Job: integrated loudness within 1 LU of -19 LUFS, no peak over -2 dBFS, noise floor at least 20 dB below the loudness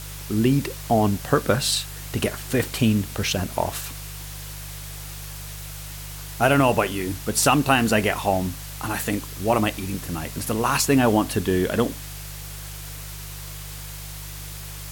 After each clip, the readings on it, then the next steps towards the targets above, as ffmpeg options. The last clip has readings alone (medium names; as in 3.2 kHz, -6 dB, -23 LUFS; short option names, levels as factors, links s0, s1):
hum 50 Hz; highest harmonic 150 Hz; hum level -35 dBFS; noise floor -36 dBFS; noise floor target -43 dBFS; loudness -22.5 LUFS; peak level -4.5 dBFS; loudness target -19.0 LUFS
-> -af "bandreject=f=50:t=h:w=4,bandreject=f=100:t=h:w=4,bandreject=f=150:t=h:w=4"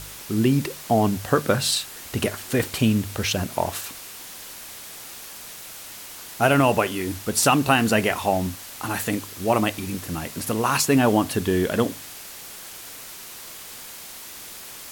hum not found; noise floor -40 dBFS; noise floor target -43 dBFS
-> -af "afftdn=nr=6:nf=-40"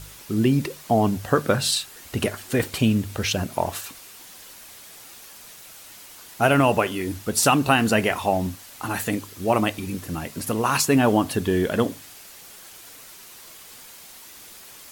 noise floor -45 dBFS; loudness -23.0 LUFS; peak level -4.5 dBFS; loudness target -19.0 LUFS
-> -af "volume=1.58,alimiter=limit=0.794:level=0:latency=1"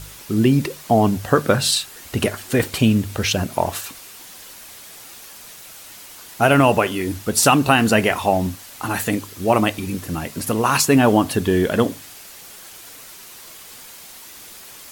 loudness -19.0 LUFS; peak level -2.0 dBFS; noise floor -41 dBFS